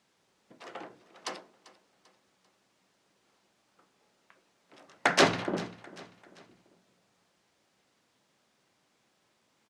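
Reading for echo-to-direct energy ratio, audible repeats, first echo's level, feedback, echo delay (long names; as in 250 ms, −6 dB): −18.0 dB, 3, −19.0 dB, 42%, 393 ms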